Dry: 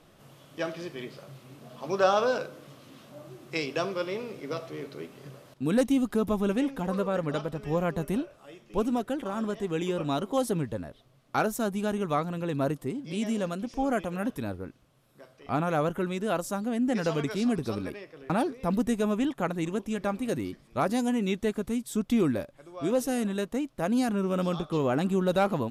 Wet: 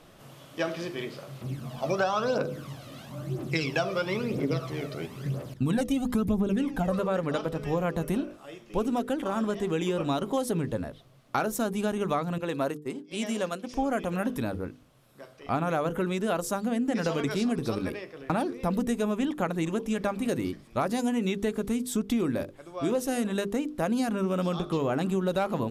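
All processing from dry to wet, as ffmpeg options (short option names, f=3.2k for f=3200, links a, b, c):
-filter_complex "[0:a]asettb=1/sr,asplit=3[a][b][c];[a]atrim=end=1.414[d];[b]atrim=start=1.41:end=6.99,asetpts=PTS-STARTPTS,afade=t=in:d=0.004:c=qsin,afade=t=out:st=5.576:d=0.004:c=qsin,equalizer=f=98:w=0.38:g=7,aphaser=in_gain=1:out_gain=1:delay=1.7:decay=0.6:speed=1:type=triangular[e];[c]atrim=start=6.986[f];[d][e]acrossfade=d=0.004:c1=hsin:c2=qsin[g];[g][f]acrossfade=d=0.004:c1=qsin:c2=hsin,asettb=1/sr,asplit=3[h][i][j];[h]atrim=end=12.384[k];[i]atrim=start=12.38:end=13.69,asetpts=PTS-STARTPTS,afade=t=in:d=0.004:c=qsin,afade=t=out:st=1.306:d=0.004:c=qsin,highpass=f=400:p=1,agate=range=-33dB:threshold=-36dB:ratio=3:release=100:detection=peak[l];[j]atrim=start=13.686[m];[k][l]acrossfade=d=0.004:c1=hsin:c2=qsin[n];[n][m]acrossfade=d=0.004:c1=qsin:c2=hsin,bandreject=f=50:t=h:w=6,bandreject=f=100:t=h:w=6,bandreject=f=150:t=h:w=6,bandreject=f=200:t=h:w=6,bandreject=f=250:t=h:w=6,bandreject=f=300:t=h:w=6,bandreject=f=350:t=h:w=6,bandreject=f=400:t=h:w=6,bandreject=f=450:t=h:w=6,bandreject=f=500:t=h:w=6,acompressor=threshold=-28dB:ratio=6,volume=4.5dB"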